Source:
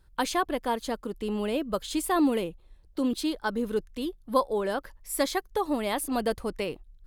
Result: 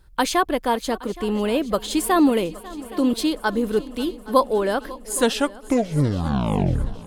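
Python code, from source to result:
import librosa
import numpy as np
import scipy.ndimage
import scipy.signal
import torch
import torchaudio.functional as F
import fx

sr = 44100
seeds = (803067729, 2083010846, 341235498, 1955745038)

y = fx.tape_stop_end(x, sr, length_s=2.16)
y = fx.echo_heads(y, sr, ms=273, heads='second and third', feedback_pct=57, wet_db=-19.5)
y = y * 10.0 ** (7.0 / 20.0)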